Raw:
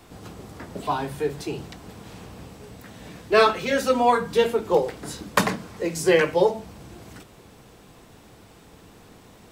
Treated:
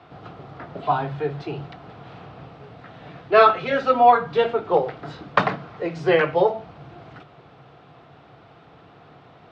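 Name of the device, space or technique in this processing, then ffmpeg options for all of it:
guitar cabinet: -af "highpass=96,equalizer=f=140:t=q:w=4:g=9,equalizer=f=210:t=q:w=4:g=-7,equalizer=f=710:t=q:w=4:g=9,equalizer=f=1.3k:t=q:w=4:g=8,lowpass=f=3.8k:w=0.5412,lowpass=f=3.8k:w=1.3066,volume=-1dB"

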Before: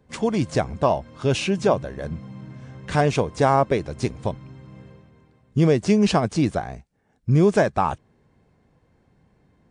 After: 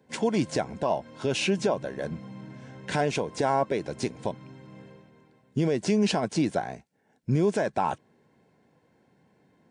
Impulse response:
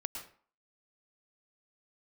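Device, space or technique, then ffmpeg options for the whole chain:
PA system with an anti-feedback notch: -af "highpass=180,asuperstop=centerf=1200:order=12:qfactor=6.9,alimiter=limit=-15.5dB:level=0:latency=1:release=137"

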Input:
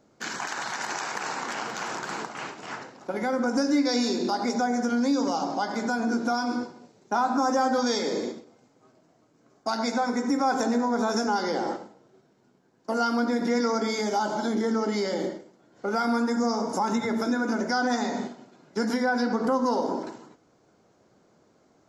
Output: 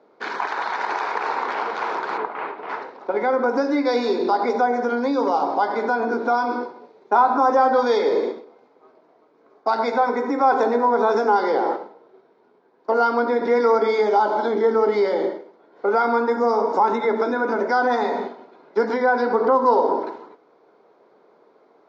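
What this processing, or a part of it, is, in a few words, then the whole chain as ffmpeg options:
phone earpiece: -filter_complex "[0:a]asplit=3[a][b][c];[a]afade=t=out:st=2.17:d=0.02[d];[b]lowpass=2.6k,afade=t=in:st=2.17:d=0.02,afade=t=out:st=2.68:d=0.02[e];[c]afade=t=in:st=2.68:d=0.02[f];[d][e][f]amix=inputs=3:normalize=0,highpass=390,equalizer=f=430:t=q:w=4:g=8,equalizer=f=960:t=q:w=4:g=5,equalizer=f=1.7k:t=q:w=4:g=-3,equalizer=f=2.9k:t=q:w=4:g=-8,lowpass=f=3.6k:w=0.5412,lowpass=f=3.6k:w=1.3066,volume=6.5dB"

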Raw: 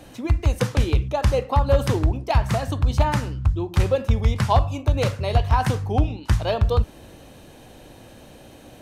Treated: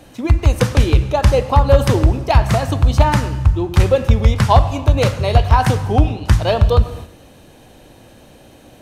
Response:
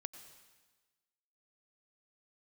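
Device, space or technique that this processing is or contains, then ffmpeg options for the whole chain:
keyed gated reverb: -filter_complex "[0:a]asplit=3[a][b][c];[1:a]atrim=start_sample=2205[d];[b][d]afir=irnorm=-1:irlink=0[e];[c]apad=whole_len=388609[f];[e][f]sidechaingate=range=-14dB:threshold=-40dB:ratio=16:detection=peak,volume=7dB[g];[a][g]amix=inputs=2:normalize=0,volume=-1dB"

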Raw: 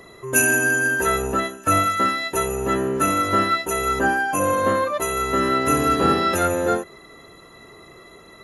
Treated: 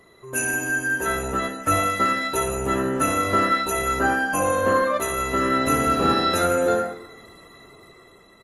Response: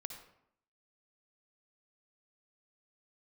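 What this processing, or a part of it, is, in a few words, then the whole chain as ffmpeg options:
speakerphone in a meeting room: -filter_complex "[1:a]atrim=start_sample=2205[a];[0:a][a]afir=irnorm=-1:irlink=0,asplit=2[b][c];[c]adelay=100,highpass=300,lowpass=3.4k,asoftclip=type=hard:threshold=-16dB,volume=-25dB[d];[b][d]amix=inputs=2:normalize=0,dynaudnorm=f=180:g=11:m=7dB,volume=-4dB" -ar 48000 -c:a libopus -b:a 24k

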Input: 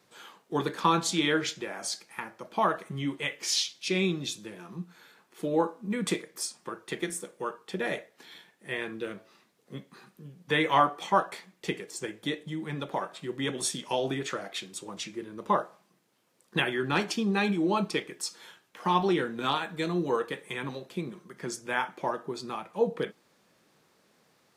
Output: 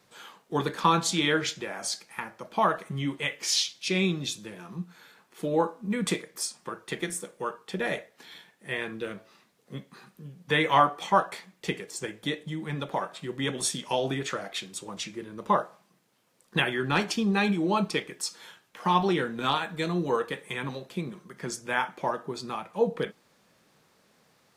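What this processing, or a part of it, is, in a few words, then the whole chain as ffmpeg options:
low shelf boost with a cut just above: -af "lowshelf=f=74:g=6.5,equalizer=f=340:t=o:w=0.55:g=-3.5,volume=2dB"

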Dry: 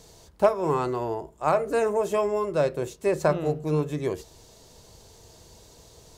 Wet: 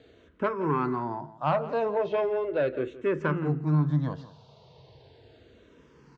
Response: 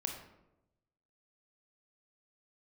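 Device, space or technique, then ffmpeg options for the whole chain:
barber-pole phaser into a guitar amplifier: -filter_complex "[0:a]asplit=2[a][b];[b]afreqshift=-0.37[c];[a][c]amix=inputs=2:normalize=1,asoftclip=type=tanh:threshold=-19.5dB,highpass=91,equalizer=f=140:t=q:w=4:g=10,equalizer=f=260:t=q:w=4:g=7,equalizer=f=1k:t=q:w=4:g=3,equalizer=f=1.5k:t=q:w=4:g=5,lowpass=f=3.8k:w=0.5412,lowpass=f=3.8k:w=1.3066,asplit=2[d][e];[e]adelay=169.1,volume=-16dB,highshelf=f=4k:g=-3.8[f];[d][f]amix=inputs=2:normalize=0"

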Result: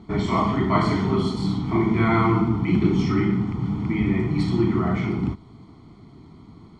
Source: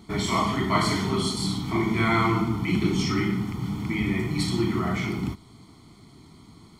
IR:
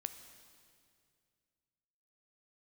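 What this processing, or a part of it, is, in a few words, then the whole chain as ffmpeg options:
through cloth: -af "lowpass=6.4k,highshelf=f=2.2k:g=-14,volume=4.5dB"

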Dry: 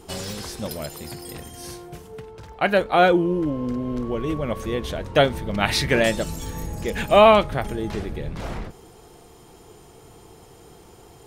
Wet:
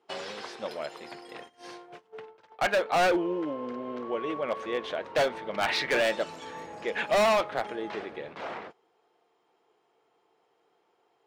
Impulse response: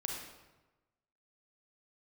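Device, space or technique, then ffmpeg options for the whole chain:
walkie-talkie: -filter_complex "[0:a]asettb=1/sr,asplit=3[a][b][c];[a]atrim=end=2.394[d];[b]atrim=start=2.39:end=3.54,asetpts=PTS-STARTPTS,afade=t=in:d=0.004:c=qsin,afade=t=out:st=1.146:d=0.004:c=qsin,highshelf=f=3.3k:g=4.5[e];[c]atrim=start=3.536[f];[d][e]acrossfade=d=0.004:c1=hsin:c2=qsin[g];[g][f]acrossfade=d=0.004:c1=qsin:c2=hsin,highpass=500,lowpass=3k,asoftclip=type=hard:threshold=-20.5dB,agate=range=-17dB:threshold=-44dB:ratio=16:detection=peak"

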